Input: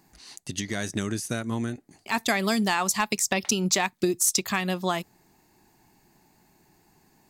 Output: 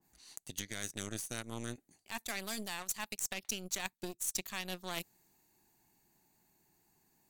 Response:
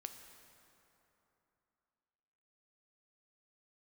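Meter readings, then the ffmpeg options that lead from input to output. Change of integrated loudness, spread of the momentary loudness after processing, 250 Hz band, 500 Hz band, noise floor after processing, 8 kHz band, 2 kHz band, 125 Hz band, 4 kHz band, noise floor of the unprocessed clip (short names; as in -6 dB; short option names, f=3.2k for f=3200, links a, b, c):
-13.5 dB, 9 LU, -18.0 dB, -17.0 dB, -77 dBFS, -12.0 dB, -13.5 dB, -16.0 dB, -11.5 dB, -63 dBFS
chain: -af "aeval=exprs='0.282*(cos(1*acos(clip(val(0)/0.282,-1,1)))-cos(1*PI/2))+0.0562*(cos(3*acos(clip(val(0)/0.282,-1,1)))-cos(3*PI/2))+0.0126*(cos(5*acos(clip(val(0)/0.282,-1,1)))-cos(5*PI/2))+0.0178*(cos(6*acos(clip(val(0)/0.282,-1,1)))-cos(6*PI/2))+0.0141*(cos(7*acos(clip(val(0)/0.282,-1,1)))-cos(7*PI/2))':c=same,aemphasis=mode=production:type=cd,areverse,acompressor=threshold=-33dB:ratio=12,areverse,bandreject=f=5.1k:w=9.8,adynamicequalizer=threshold=0.002:dfrequency=1900:dqfactor=0.7:tfrequency=1900:tqfactor=0.7:attack=5:release=100:ratio=0.375:range=1.5:mode=boostabove:tftype=highshelf,volume=-2.5dB"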